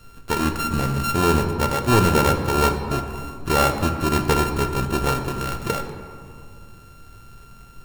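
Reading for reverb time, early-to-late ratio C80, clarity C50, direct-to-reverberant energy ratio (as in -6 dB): 2.4 s, 8.0 dB, 7.0 dB, 5.0 dB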